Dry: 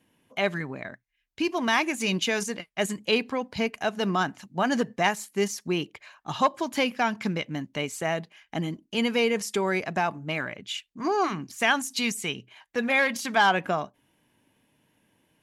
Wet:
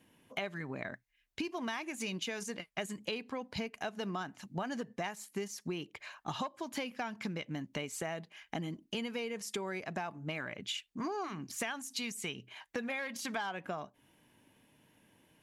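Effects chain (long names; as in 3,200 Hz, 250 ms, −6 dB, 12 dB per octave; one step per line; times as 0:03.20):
downward compressor 10 to 1, threshold −36 dBFS, peak gain reduction 20 dB
level +1 dB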